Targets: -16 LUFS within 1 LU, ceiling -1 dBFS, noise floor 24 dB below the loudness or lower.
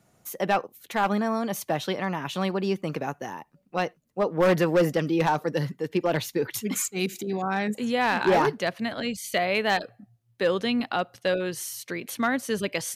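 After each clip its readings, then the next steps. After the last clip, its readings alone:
clipped samples 0.6%; clipping level -15.0 dBFS; loudness -26.5 LUFS; peak level -15.0 dBFS; loudness target -16.0 LUFS
-> clip repair -15 dBFS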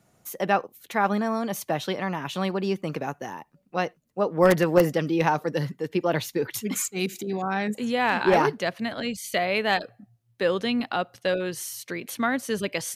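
clipped samples 0.0%; loudness -26.0 LUFS; peak level -6.0 dBFS; loudness target -16.0 LUFS
-> trim +10 dB; peak limiter -1 dBFS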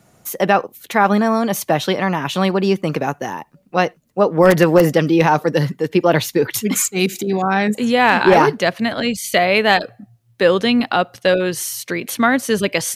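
loudness -16.5 LUFS; peak level -1.0 dBFS; noise floor -56 dBFS

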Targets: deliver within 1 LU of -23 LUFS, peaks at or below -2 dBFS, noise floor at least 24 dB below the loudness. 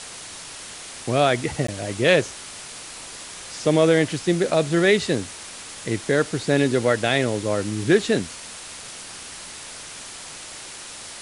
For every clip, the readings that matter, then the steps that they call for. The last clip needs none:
dropouts 1; longest dropout 14 ms; noise floor -38 dBFS; noise floor target -46 dBFS; loudness -21.5 LUFS; peak level -4.5 dBFS; loudness target -23.0 LUFS
-> interpolate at 1.67 s, 14 ms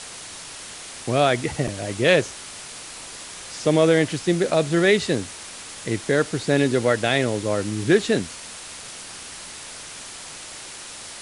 dropouts 0; noise floor -38 dBFS; noise floor target -46 dBFS
-> noise reduction 8 dB, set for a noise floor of -38 dBFS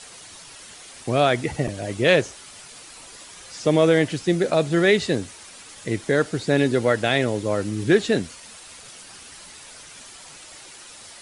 noise floor -44 dBFS; noise floor target -46 dBFS
-> noise reduction 6 dB, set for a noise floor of -44 dBFS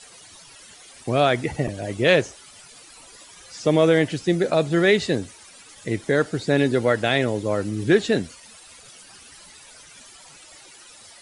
noise floor -47 dBFS; loudness -21.5 LUFS; peak level -4.5 dBFS; loudness target -23.0 LUFS
-> trim -1.5 dB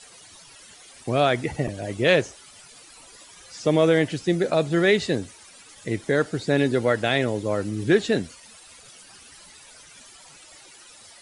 loudness -23.0 LUFS; peak level -6.0 dBFS; noise floor -49 dBFS

